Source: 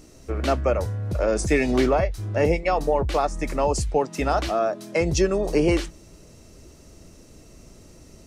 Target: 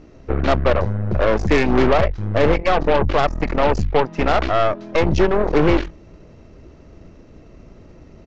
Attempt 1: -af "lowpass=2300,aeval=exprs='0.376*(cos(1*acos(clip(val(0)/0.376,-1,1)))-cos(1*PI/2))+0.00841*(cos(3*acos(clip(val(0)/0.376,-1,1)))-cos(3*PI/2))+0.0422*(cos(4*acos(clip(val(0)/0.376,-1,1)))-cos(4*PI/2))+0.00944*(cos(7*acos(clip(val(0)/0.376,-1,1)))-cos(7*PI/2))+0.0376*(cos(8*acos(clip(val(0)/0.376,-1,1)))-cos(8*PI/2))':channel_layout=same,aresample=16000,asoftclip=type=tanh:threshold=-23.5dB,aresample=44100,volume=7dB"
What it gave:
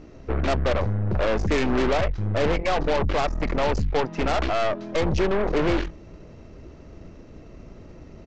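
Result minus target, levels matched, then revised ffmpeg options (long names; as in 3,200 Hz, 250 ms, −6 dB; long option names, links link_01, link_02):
soft clipping: distortion +10 dB
-af "lowpass=2300,aeval=exprs='0.376*(cos(1*acos(clip(val(0)/0.376,-1,1)))-cos(1*PI/2))+0.00841*(cos(3*acos(clip(val(0)/0.376,-1,1)))-cos(3*PI/2))+0.0422*(cos(4*acos(clip(val(0)/0.376,-1,1)))-cos(4*PI/2))+0.00944*(cos(7*acos(clip(val(0)/0.376,-1,1)))-cos(7*PI/2))+0.0376*(cos(8*acos(clip(val(0)/0.376,-1,1)))-cos(8*PI/2))':channel_layout=same,aresample=16000,asoftclip=type=tanh:threshold=-13dB,aresample=44100,volume=7dB"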